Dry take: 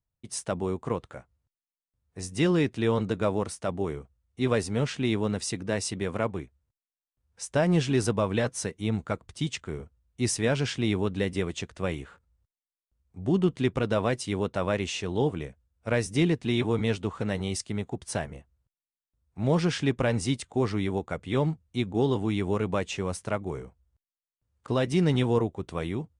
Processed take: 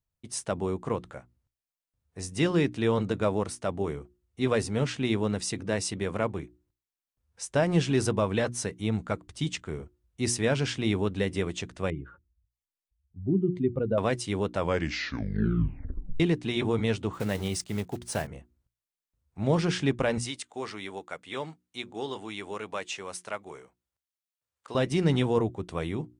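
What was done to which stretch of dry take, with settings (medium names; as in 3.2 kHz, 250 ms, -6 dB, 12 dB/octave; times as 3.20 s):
11.90–13.98 s: spectral contrast enhancement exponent 2
14.55 s: tape stop 1.65 s
17.13–18.29 s: block-companded coder 5-bit
20.18–24.75 s: high-pass 1.1 kHz 6 dB/octave
whole clip: hum notches 60/120/180/240/300/360 Hz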